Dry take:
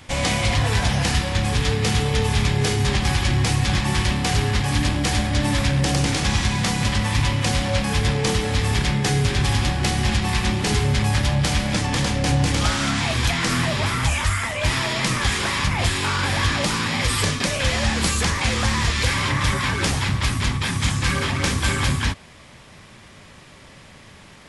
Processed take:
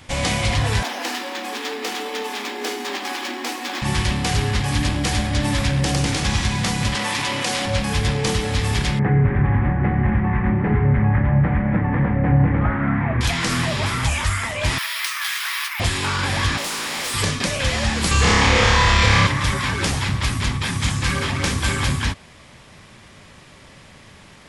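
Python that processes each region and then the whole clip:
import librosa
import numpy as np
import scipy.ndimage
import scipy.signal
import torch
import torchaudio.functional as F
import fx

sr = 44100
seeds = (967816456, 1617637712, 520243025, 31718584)

y = fx.chain(x, sr, fx.cheby_ripple_highpass(hz=230.0, ripple_db=3),
    fx.resample_linear(factor=2), at=(0.83, 3.82))
y = fx.chain(y, sr, fx.highpass(hz=300.0, slope=12),
    fx.env_flatten(amount_pct=70), at=(6.95, 7.66))
y = fx.chain(y, sr, fx.ellip_lowpass(hz=2000.0, order=4, stop_db=70),
    fx.peak_eq(hz=170.0, db=6.5, octaves=1.8), at=(8.99, 13.21))
y = fx.chain(y, sr, fx.highpass(hz=1200.0, slope=24),
    fx.resample_bad(factor=3, down='filtered', up='hold'), at=(14.78, 15.8))
y = fx.spec_flatten(y, sr, power=0.62, at=(16.57, 17.13), fade=0.02)
y = fx.highpass(y, sr, hz=270.0, slope=12, at=(16.57, 17.13), fade=0.02)
y = fx.clip_hard(y, sr, threshold_db=-23.5, at=(16.57, 17.13), fade=0.02)
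y = fx.chain(y, sr, fx.air_absorb(metres=82.0),
    fx.room_flutter(wall_m=5.0, rt60_s=1.3),
    fx.env_flatten(amount_pct=70), at=(18.11, 19.27))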